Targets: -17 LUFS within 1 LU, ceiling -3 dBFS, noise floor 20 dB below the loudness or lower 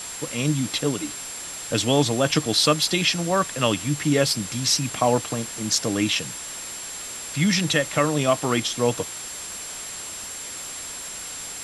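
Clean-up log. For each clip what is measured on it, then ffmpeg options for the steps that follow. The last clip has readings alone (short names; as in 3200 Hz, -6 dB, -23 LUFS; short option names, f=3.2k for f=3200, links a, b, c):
steady tone 7500 Hz; tone level -35 dBFS; noise floor -35 dBFS; noise floor target -44 dBFS; loudness -23.5 LUFS; peak -5.5 dBFS; loudness target -17.0 LUFS
-> -af "bandreject=f=7.5k:w=30"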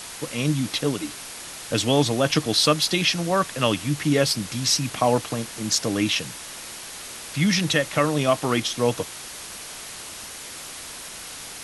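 steady tone none; noise floor -38 dBFS; noise floor target -43 dBFS
-> -af "afftdn=nr=6:nf=-38"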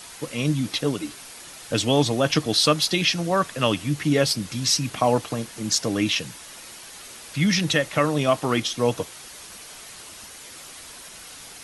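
noise floor -42 dBFS; noise floor target -43 dBFS
-> -af "afftdn=nr=6:nf=-42"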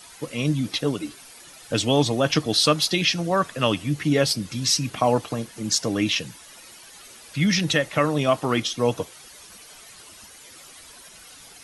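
noise floor -46 dBFS; loudness -22.5 LUFS; peak -5.5 dBFS; loudness target -17.0 LUFS
-> -af "volume=5.5dB,alimiter=limit=-3dB:level=0:latency=1"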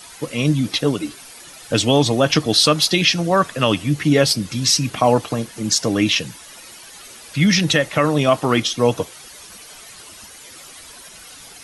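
loudness -17.5 LUFS; peak -3.0 dBFS; noise floor -41 dBFS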